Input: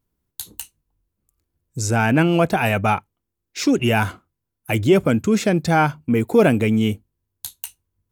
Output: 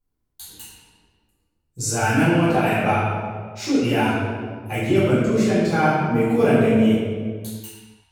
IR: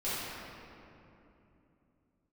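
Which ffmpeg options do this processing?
-filter_complex "[0:a]asettb=1/sr,asplit=3[a][b][c];[a]atrim=end=1.804[d];[b]atrim=start=1.8:end=2.26,asetpts=PTS-STARTPTS,afade=t=in:d=0.004:c=qsin,afade=t=out:st=0.456:d=0.004:c=qsin,highshelf=f=5.2k:g=11.5[e];[c]atrim=start=2.256[f];[d][e]acrossfade=d=0.004:c1=hsin:c2=qsin[g];[g][f]acrossfade=d=0.004:c1=qsin:c2=hsin[h];[1:a]atrim=start_sample=2205,asetrate=88200,aresample=44100[i];[h][i]afir=irnorm=-1:irlink=0,volume=-3.5dB"

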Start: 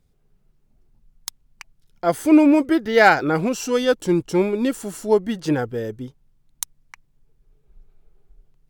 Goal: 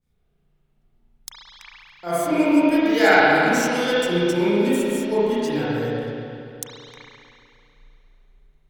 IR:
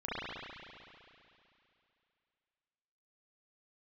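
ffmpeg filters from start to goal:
-filter_complex "[0:a]highshelf=f=2.5k:g=8[a];[1:a]atrim=start_sample=2205[b];[a][b]afir=irnorm=-1:irlink=0,adynamicequalizer=threshold=0.0282:dfrequency=3800:dqfactor=0.7:tfrequency=3800:tqfactor=0.7:attack=5:release=100:ratio=0.375:range=4:mode=boostabove:tftype=highshelf,volume=-7.5dB"

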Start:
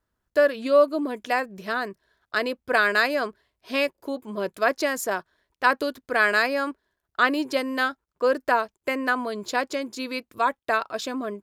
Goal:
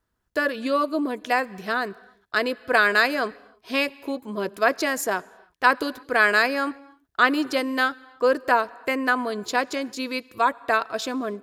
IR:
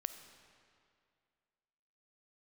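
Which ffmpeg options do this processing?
-filter_complex "[0:a]bandreject=f=580:w=12,asplit=2[a][b];[1:a]atrim=start_sample=2205,afade=t=out:st=0.26:d=0.01,atrim=end_sample=11907,asetrate=28224,aresample=44100[c];[b][c]afir=irnorm=-1:irlink=0,volume=-11.5dB[d];[a][d]amix=inputs=2:normalize=0"

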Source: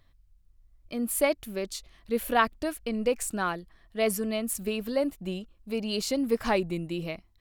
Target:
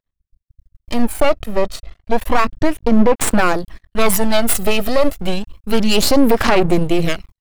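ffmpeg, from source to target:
-filter_complex "[0:a]asettb=1/sr,asplit=3[a][b][c];[a]atrim=end=1.024[d];[b]atrim=start=1.02:end=3.21,asetpts=PTS-STARTPTS,afade=t=in:d=0.004:c=qsin,afade=t=out:st=2.186:d=0.004:c=qsin,lowpass=f=1.4k:p=1[e];[c]atrim=start=3.206[f];[d][e]acrossfade=d=0.004:c1=hsin:c2=qsin[g];[g][f]acrossfade=d=0.004:c1=qsin:c2=hsin,agate=range=-39dB:threshold=-53dB:ratio=16:detection=peak,aeval=exprs='max(val(0),0)':c=same,aphaser=in_gain=1:out_gain=1:delay=1.6:decay=0.44:speed=0.31:type=sinusoidal,alimiter=level_in=21dB:limit=-1dB:release=50:level=0:latency=1,volume=-1dB"

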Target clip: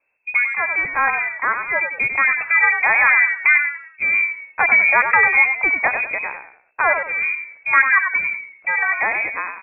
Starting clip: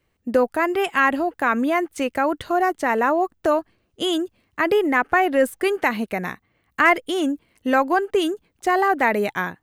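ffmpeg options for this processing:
-filter_complex "[0:a]asettb=1/sr,asplit=3[a][b][c];[a]atrim=end=1.224[d];[b]atrim=start=1.22:end=1.81,asetpts=PTS-STARTPTS,afade=t=in:d=0.004:c=qsin,afade=t=out:st=0.586:d=0.004:c=qsin,highpass=600[e];[c]atrim=start=1.806[f];[d][e]acrossfade=d=0.004:c1=hsin:c2=qsin[g];[g][f]acrossfade=d=0.004:c1=qsin:c2=hsin,asettb=1/sr,asplit=3[h][i][j];[h]atrim=end=7.004[k];[i]atrim=start=7:end=8.15,asetpts=PTS-STARTPTS,afade=t=in:d=0.004:c=qsin,afade=t=out:st=1.146:d=0.004:c=qsin,equalizer=f=1.1k:w=1:g=9[l];[j]atrim=start=8.146[m];[k][l]acrossfade=d=0.004:c1=hsin:c2=qsin[n];[n][m]acrossfade=d=0.004:c1=qsin:c2=hsin,dynaudnorm=f=200:g=17:m=11.5dB,asplit=5[o][p][q][r][s];[p]adelay=95,afreqshift=47,volume=-7dB[t];[q]adelay=190,afreqshift=94,volume=-16.4dB[u];[r]adelay=285,afreqshift=141,volume=-25.7dB[v];[s]adelay=380,afreqshift=188,volume=-35.1dB[w];[o][t][u][v][w]amix=inputs=5:normalize=0,lowpass=f=2.3k:t=q:w=0.5098,lowpass=f=2.3k:t=q:w=0.6013,lowpass=f=2.3k:t=q:w=0.9,lowpass=f=2.3k:t=q:w=2.563,afreqshift=-2700,volume=-1dB"

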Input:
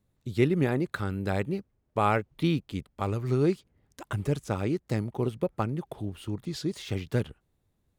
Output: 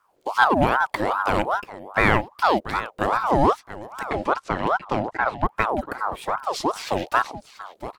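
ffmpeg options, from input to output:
-filter_complex "[0:a]asettb=1/sr,asplit=3[a][b][c];[a]atrim=end=4.064[d];[b]atrim=start=4.06:end=5.46,asetpts=PTS-STARTPTS,afade=t=in:d=0.004:c=qsin,afade=t=out:st=1.396:d=0.004:c=qsin,highpass=140,lowpass=3.8k[e];[c]atrim=start=5.456[f];[d][e]acrossfade=d=0.004:c1=hsin:c2=qsin[g];[g][f]acrossfade=d=0.004:c1=qsin:c2=hsin,aecho=1:1:686:0.188,asplit=2[h][i];[i]asoftclip=type=hard:threshold=-25.5dB,volume=-7dB[j];[h][j]amix=inputs=2:normalize=0,aeval=exprs='val(0)*sin(2*PI*820*n/s+820*0.5/2.5*sin(2*PI*2.5*n/s))':c=same,volume=7dB"

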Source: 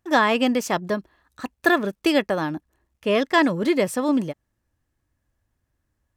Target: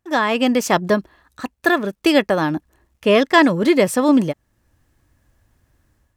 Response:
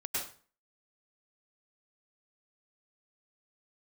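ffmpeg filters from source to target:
-af "dynaudnorm=f=140:g=5:m=14.5dB,volume=-1dB"

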